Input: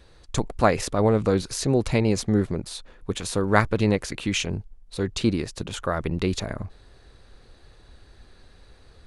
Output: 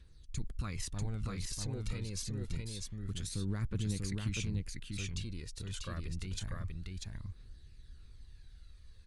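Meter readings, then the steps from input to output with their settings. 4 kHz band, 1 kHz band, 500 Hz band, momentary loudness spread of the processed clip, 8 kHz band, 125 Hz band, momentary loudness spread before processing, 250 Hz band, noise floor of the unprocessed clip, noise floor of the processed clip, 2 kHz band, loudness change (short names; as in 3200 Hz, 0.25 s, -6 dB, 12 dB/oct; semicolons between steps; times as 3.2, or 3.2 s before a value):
-11.5 dB, -25.0 dB, -25.5 dB, 21 LU, -9.5 dB, -9.5 dB, 12 LU, -17.0 dB, -53 dBFS, -56 dBFS, -18.0 dB, -15.0 dB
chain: passive tone stack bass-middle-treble 6-0-2; limiter -35 dBFS, peak gain reduction 11 dB; phaser 0.27 Hz, delay 2.2 ms, feedback 51%; on a send: echo 0.642 s -3 dB; on the sum: gain +3.5 dB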